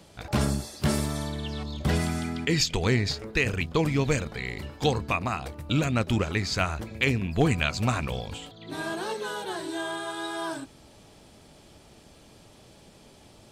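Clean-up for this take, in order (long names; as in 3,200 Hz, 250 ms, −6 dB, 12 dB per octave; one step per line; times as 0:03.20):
clipped peaks rebuilt −11 dBFS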